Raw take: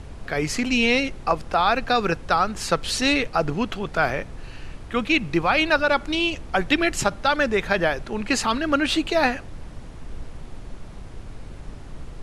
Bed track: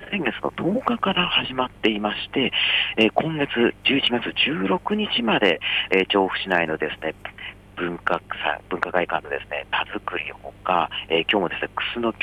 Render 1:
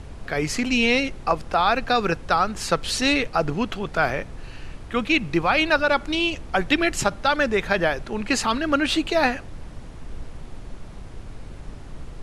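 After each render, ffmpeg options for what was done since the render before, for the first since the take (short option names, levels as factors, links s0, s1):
-af anull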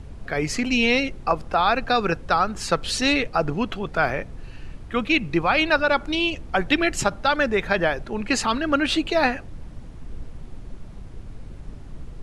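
-af "afftdn=nr=6:nf=-39"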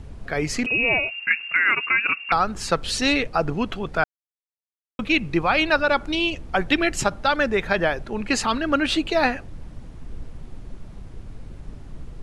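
-filter_complex "[0:a]asettb=1/sr,asplit=3[s0][s1][s2];[s0]atrim=end=0.664[s3];[s1]atrim=start=0.66:end=2.32,asetpts=PTS-STARTPTS,afade=t=in:d=0.004:c=qsin,afade=t=out:st=1.656:d=0.004:c=qsin,lowpass=f=2400:t=q:w=0.5098,lowpass=f=2400:t=q:w=0.6013,lowpass=f=2400:t=q:w=0.9,lowpass=f=2400:t=q:w=2.563,afreqshift=-2800[s4];[s2]atrim=start=2.316[s5];[s3][s4]acrossfade=d=0.004:c1=hsin:c2=qsin[s6];[s6][s5]acrossfade=d=0.004:c1=qsin:c2=hsin,asplit=3[s7][s8][s9];[s7]atrim=end=4.04,asetpts=PTS-STARTPTS,afade=t=out:st=4.036:d=0.004:c=hsin[s10];[s8]atrim=start=4.04:end=4.99,asetpts=PTS-STARTPTS,volume=0[s11];[s9]atrim=start=4.99,asetpts=PTS-STARTPTS,afade=t=in:d=0.004:c=hsin[s12];[s10][s11][s12]concat=n=3:v=0:a=1"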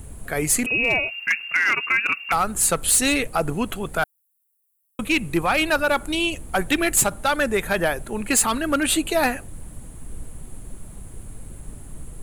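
-af "aexciter=amount=12.1:drive=8.2:freq=7900,asoftclip=type=hard:threshold=0.224"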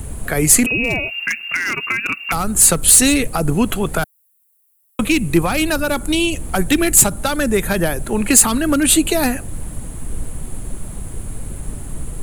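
-filter_complex "[0:a]acrossover=split=340|5000[s0][s1][s2];[s1]acompressor=threshold=0.0316:ratio=6[s3];[s0][s3][s2]amix=inputs=3:normalize=0,alimiter=level_in=3.16:limit=0.891:release=50:level=0:latency=1"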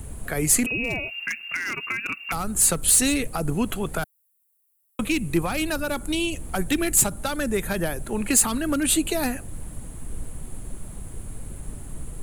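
-af "volume=0.398"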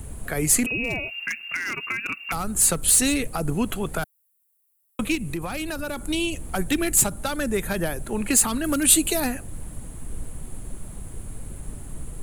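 -filter_complex "[0:a]asettb=1/sr,asplit=3[s0][s1][s2];[s0]atrim=end=5.154[s3];[s1]atrim=start=5.15:end=6.01,asetpts=PTS-STARTPTS,afade=t=in:d=0.004:c=qsin,afade=t=out:st=0.856:d=0.004:c=qsin,acompressor=threshold=0.0562:ratio=6:attack=3.2:release=140:knee=1:detection=peak[s4];[s2]atrim=start=6.006[s5];[s3][s4]acrossfade=d=0.004:c1=hsin:c2=qsin[s6];[s6][s5]acrossfade=d=0.004:c1=qsin:c2=hsin,asettb=1/sr,asplit=3[s7][s8][s9];[s7]atrim=end=8.644[s10];[s8]atrim=start=8.64:end=9.2,asetpts=PTS-STARTPTS,afade=t=in:d=0.004:c=qsin,afade=t=out:st=0.556:d=0.004:c=qsin,highshelf=f=4800:g=8[s11];[s9]atrim=start=9.196[s12];[s10][s11]acrossfade=d=0.004:c1=hsin:c2=qsin[s13];[s13][s12]acrossfade=d=0.004:c1=qsin:c2=hsin"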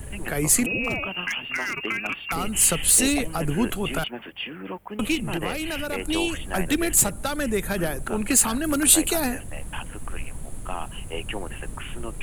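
-filter_complex "[1:a]volume=0.224[s0];[0:a][s0]amix=inputs=2:normalize=0"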